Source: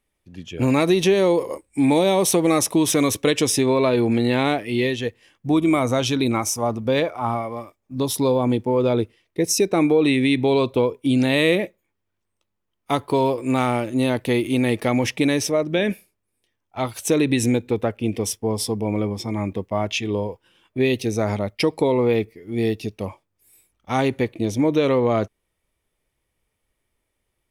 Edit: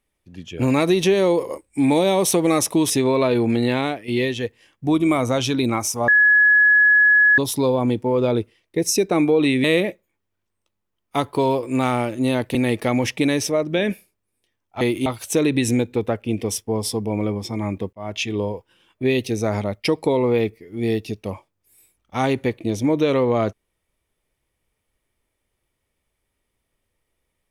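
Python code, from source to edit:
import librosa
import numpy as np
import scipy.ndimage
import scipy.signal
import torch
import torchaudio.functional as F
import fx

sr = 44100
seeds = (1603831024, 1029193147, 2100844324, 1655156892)

y = fx.edit(x, sr, fx.cut(start_s=2.9, length_s=0.62),
    fx.fade_out_to(start_s=4.29, length_s=0.41, floor_db=-8.5),
    fx.bleep(start_s=6.7, length_s=1.3, hz=1690.0, db=-10.5),
    fx.cut(start_s=10.26, length_s=1.13),
    fx.move(start_s=14.3, length_s=0.25, to_s=16.81),
    fx.fade_in_span(start_s=19.68, length_s=0.29), tone=tone)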